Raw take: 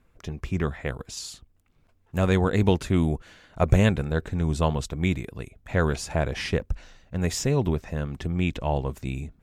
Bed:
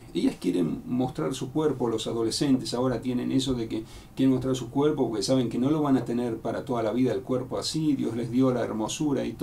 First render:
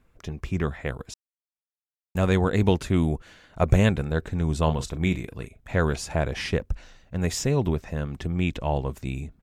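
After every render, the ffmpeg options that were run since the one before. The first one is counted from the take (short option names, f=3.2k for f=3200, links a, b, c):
-filter_complex "[0:a]asplit=3[a][b][c];[a]afade=t=out:st=4.66:d=0.02[d];[b]asplit=2[e][f];[f]adelay=38,volume=-11dB[g];[e][g]amix=inputs=2:normalize=0,afade=t=in:st=4.66:d=0.02,afade=t=out:st=5.77:d=0.02[h];[c]afade=t=in:st=5.77:d=0.02[i];[d][h][i]amix=inputs=3:normalize=0,asplit=3[j][k][l];[j]atrim=end=1.14,asetpts=PTS-STARTPTS,afade=t=out:st=1.136:d=0.004:c=hsin[m];[k]atrim=start=1.14:end=2.15,asetpts=PTS-STARTPTS,volume=0[n];[l]atrim=start=2.15,asetpts=PTS-STARTPTS,afade=t=in:d=0.004:c=hsin[o];[m][n][o]concat=n=3:v=0:a=1"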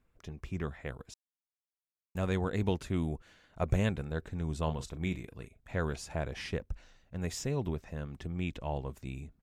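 -af "volume=-10dB"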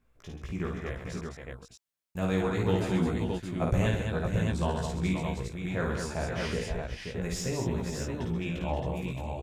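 -filter_complex "[0:a]asplit=2[a][b];[b]adelay=17,volume=-3dB[c];[a][c]amix=inputs=2:normalize=0,aecho=1:1:53|132|212|526|619:0.631|0.335|0.531|0.422|0.596"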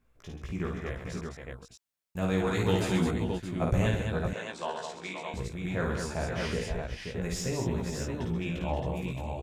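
-filter_complex "[0:a]asettb=1/sr,asplit=3[a][b][c];[a]atrim=end=2.474[d];[b]atrim=start=2.47:end=3.11,asetpts=PTS-STARTPTS,afade=t=in:d=0.004:c=qsin,afade=t=out:st=0.636:d=0.004:c=qsin,highshelf=f=2.1k:g=7.5[e];[c]atrim=start=3.106[f];[d][e]acrossfade=d=0.004:c1=hsin:c2=qsin[g];[g][f]acrossfade=d=0.004:c1=qsin:c2=hsin,asettb=1/sr,asplit=3[h][i][j];[h]atrim=end=4.334[k];[i]atrim=start=4.33:end=5.34,asetpts=PTS-STARTPTS,afade=t=in:d=0.004:c=qsin,afade=t=out:st=1.006:d=0.004:c=qsin,highpass=530,lowpass=7.1k[l];[j]atrim=start=5.336[m];[k][l]acrossfade=d=0.004:c1=hsin:c2=qsin[n];[n][m]acrossfade=d=0.004:c1=qsin:c2=hsin"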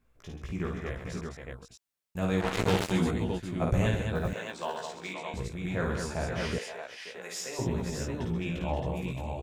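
-filter_complex "[0:a]asplit=3[a][b][c];[a]afade=t=out:st=2.4:d=0.02[d];[b]acrusher=bits=3:mix=0:aa=0.5,afade=t=in:st=2.4:d=0.02,afade=t=out:st=2.9:d=0.02[e];[c]afade=t=in:st=2.9:d=0.02[f];[d][e][f]amix=inputs=3:normalize=0,asettb=1/sr,asplit=3[g][h][i];[g]atrim=end=4.154[j];[h]atrim=start=4.15:end=5.14,asetpts=PTS-STARTPTS,afade=t=in:d=0.004:c=qsin,afade=t=out:st=0.986:d=0.004:c=qsin,acrusher=bits=8:mode=log:mix=0:aa=0.000001[k];[i]atrim=start=5.136[l];[j][k]acrossfade=d=0.004:c1=hsin:c2=qsin[m];[m][l]acrossfade=d=0.004:c1=qsin:c2=hsin,asettb=1/sr,asplit=3[n][o][p];[n]atrim=end=6.584[q];[o]atrim=start=6.58:end=7.59,asetpts=PTS-STARTPTS,afade=t=in:d=0.004:c=qsin,afade=t=out:st=1.006:d=0.004:c=qsin,highpass=600[r];[p]atrim=start=7.586[s];[q][r]acrossfade=d=0.004:c1=hsin:c2=qsin[t];[t][s]acrossfade=d=0.004:c1=qsin:c2=hsin"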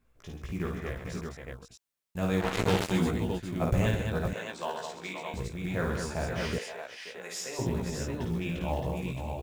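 -af "acrusher=bits=7:mode=log:mix=0:aa=0.000001"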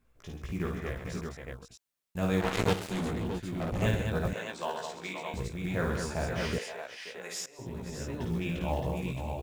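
-filter_complex "[0:a]asettb=1/sr,asplit=3[a][b][c];[a]atrim=end=2.734[d];[b]atrim=start=2.73:end=3.82,asetpts=PTS-STARTPTS,afade=t=in:d=0.004:c=qsin,afade=t=out:st=1.086:d=0.004:c=qsin,volume=30dB,asoftclip=hard,volume=-30dB[e];[c]atrim=start=3.816[f];[d][e]acrossfade=d=0.004:c1=hsin:c2=qsin[g];[g][f]acrossfade=d=0.004:c1=qsin:c2=hsin,asplit=2[h][i];[h]atrim=end=7.46,asetpts=PTS-STARTPTS,afade=t=out:st=7.456:d=0.004:c=hsin:silence=0.0944061[j];[i]atrim=start=7.46,asetpts=PTS-STARTPTS,afade=t=in:d=0.92:silence=0.0944061[k];[j][k]concat=n=2:v=0:a=1"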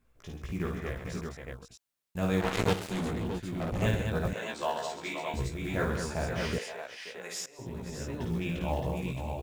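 -filter_complex "[0:a]asettb=1/sr,asplit=3[a][b][c];[a]atrim=end=4.414[d];[b]atrim=start=4.41:end=5.85,asetpts=PTS-STARTPTS,afade=t=in:d=0.004:c=qsin,afade=t=out:st=1.436:d=0.004:c=qsin,asplit=2[e][f];[f]adelay=14,volume=-2dB[g];[e][g]amix=inputs=2:normalize=0,atrim=end_sample=63504[h];[c]atrim=start=5.846[i];[d][h]acrossfade=d=0.004:c1=hsin:c2=qsin[j];[j][i]acrossfade=d=0.004:c1=qsin:c2=hsin"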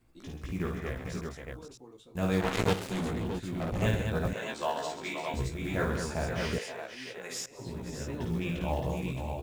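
-filter_complex "[1:a]volume=-25dB[a];[0:a][a]amix=inputs=2:normalize=0"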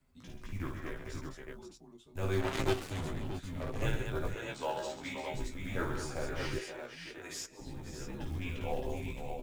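-af "afreqshift=-89,flanger=delay=7.5:depth=1.1:regen=51:speed=0.78:shape=triangular"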